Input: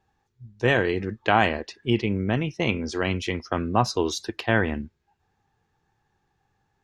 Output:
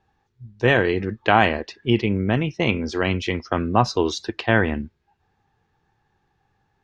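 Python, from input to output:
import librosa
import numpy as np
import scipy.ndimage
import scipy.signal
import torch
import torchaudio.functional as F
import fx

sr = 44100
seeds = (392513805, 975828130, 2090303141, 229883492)

y = scipy.signal.sosfilt(scipy.signal.butter(2, 5300.0, 'lowpass', fs=sr, output='sos'), x)
y = y * 10.0 ** (3.5 / 20.0)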